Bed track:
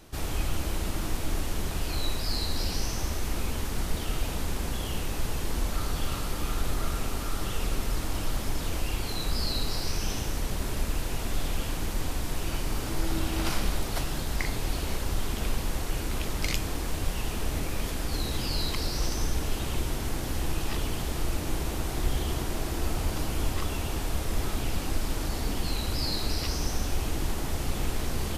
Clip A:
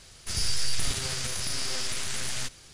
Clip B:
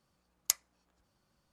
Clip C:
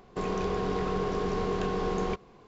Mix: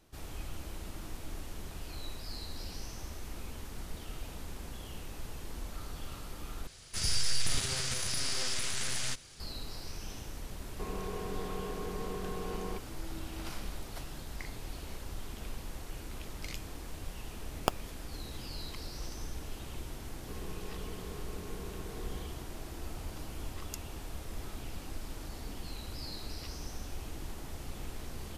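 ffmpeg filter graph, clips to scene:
ffmpeg -i bed.wav -i cue0.wav -i cue1.wav -i cue2.wav -filter_complex "[3:a]asplit=2[link_01][link_02];[2:a]asplit=2[link_03][link_04];[0:a]volume=-12.5dB[link_05];[link_03]acrusher=samples=22:mix=1:aa=0.000001[link_06];[link_02]equalizer=frequency=830:width=2.1:gain=-8.5[link_07];[link_04]acompressor=mode=upward:threshold=-36dB:ratio=2.5:attack=3.2:release=140:knee=2.83:detection=peak[link_08];[link_05]asplit=2[link_09][link_10];[link_09]atrim=end=6.674[link_11];[1:a]atrim=end=2.73,asetpts=PTS-STARTPTS,volume=-2.5dB[link_12];[link_10]atrim=start=9.396[link_13];[link_01]atrim=end=2.47,asetpts=PTS-STARTPTS,volume=-10dB,afade=type=in:duration=0.004:curve=hsin,afade=type=out:start_time=2.466:duration=0.004:curve=hsin,adelay=10630[link_14];[link_06]atrim=end=1.52,asetpts=PTS-STARTPTS,volume=-5.5dB,afade=type=in:duration=0.004:curve=hsin,afade=type=out:start_time=1.516:duration=0.004:curve=hsin,adelay=17180[link_15];[link_07]atrim=end=2.47,asetpts=PTS-STARTPTS,volume=-16.5dB,afade=type=in:duration=0.004:curve=hsin,afade=type=out:start_time=2.466:duration=0.004:curve=hsin,adelay=20120[link_16];[link_08]atrim=end=1.52,asetpts=PTS-STARTPTS,volume=-15.5dB,afade=type=in:duration=0.004:curve=hsin,afade=type=out:start_time=1.516:duration=0.004:curve=hsin,adelay=1024884S[link_17];[link_11][link_12]acrossfade=duration=0.004:curve1=hsin:curve2=hsin[link_18];[link_18][link_13]acrossfade=duration=0.004:curve1=hsin:curve2=hsin[link_19];[link_19][link_14][link_15][link_16][link_17]amix=inputs=5:normalize=0" out.wav

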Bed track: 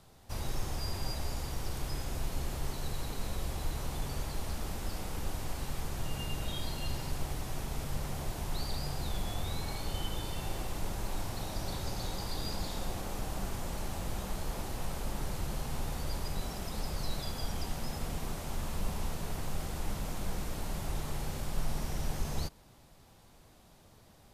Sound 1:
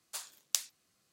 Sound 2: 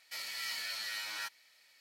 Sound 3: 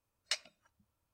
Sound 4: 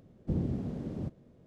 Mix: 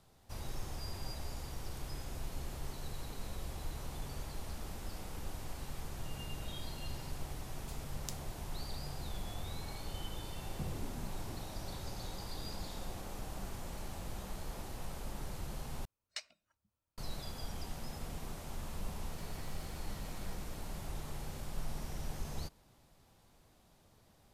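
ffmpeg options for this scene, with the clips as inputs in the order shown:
ffmpeg -i bed.wav -i cue0.wav -i cue1.wav -i cue2.wav -i cue3.wav -filter_complex "[2:a]asplit=2[link_01][link_02];[0:a]volume=-6.5dB[link_03];[4:a]asplit=2[link_04][link_05];[link_05]afreqshift=-2[link_06];[link_04][link_06]amix=inputs=2:normalize=1[link_07];[link_01]acompressor=threshold=-56dB:ratio=6:attack=3.2:release=140:knee=1:detection=peak[link_08];[link_02]acompressor=threshold=-53dB:ratio=10:attack=4:release=107:knee=1:detection=peak[link_09];[link_03]asplit=2[link_10][link_11];[link_10]atrim=end=15.854[link_12];[3:a]atrim=end=1.13,asetpts=PTS-STARTPTS,volume=-8dB[link_13];[link_11]atrim=start=16.976[link_14];[1:a]atrim=end=1.12,asetpts=PTS-STARTPTS,volume=-14.5dB,afade=type=in:duration=0.004:curve=hsin,afade=type=out:start_time=1.116:duration=0.004:curve=hsin,adelay=332514S[link_15];[link_07]atrim=end=1.46,asetpts=PTS-STARTPTS,volume=-9dB,afade=type=in:duration=0.004:curve=hsin,afade=type=out:start_time=1.456:duration=0.004:curve=hsin,adelay=10300[link_16];[link_08]atrim=end=1.8,asetpts=PTS-STARTPTS,volume=-11.5dB,afade=type=in:duration=0.004:curve=hsin,afade=type=out:start_time=1.796:duration=0.004:curve=hsin,adelay=13350[link_17];[link_09]atrim=end=1.8,asetpts=PTS-STARTPTS,volume=-3.5dB,afade=type=in:duration=0.004:curve=hsin,afade=type=out:start_time=1.796:duration=0.004:curve=hsin,adelay=19070[link_18];[link_12][link_13]acrossfade=duration=0.004:curve1=hsin:curve2=hsin[link_19];[link_19][link_14]acrossfade=duration=0.004:curve1=hsin:curve2=hsin[link_20];[link_20][link_15][link_16][link_17][link_18]amix=inputs=5:normalize=0" out.wav

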